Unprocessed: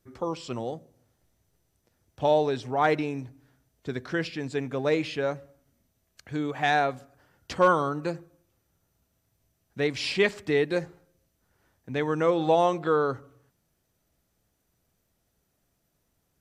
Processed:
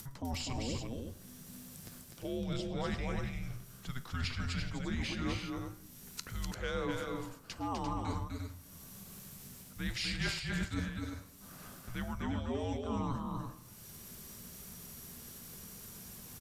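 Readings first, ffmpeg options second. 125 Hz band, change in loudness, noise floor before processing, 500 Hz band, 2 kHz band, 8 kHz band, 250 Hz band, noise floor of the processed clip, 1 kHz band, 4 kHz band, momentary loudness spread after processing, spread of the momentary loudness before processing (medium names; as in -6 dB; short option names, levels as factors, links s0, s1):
-2.0 dB, -13.0 dB, -75 dBFS, -17.0 dB, -10.5 dB, +2.5 dB, -6.5 dB, -54 dBFS, -14.5 dB, -4.5 dB, 13 LU, 15 LU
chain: -filter_complex "[0:a]afreqshift=-250,asplit=2[s0][s1];[s1]acompressor=mode=upward:threshold=0.0398:ratio=2.5,volume=0.794[s2];[s0][s2]amix=inputs=2:normalize=0,flanger=delay=9.9:depth=3.3:regen=84:speed=0.88:shape=sinusoidal,areverse,acompressor=threshold=0.0178:ratio=8,areverse,highshelf=f=4800:g=9,aecho=1:1:109|250|345:0.106|0.631|0.447"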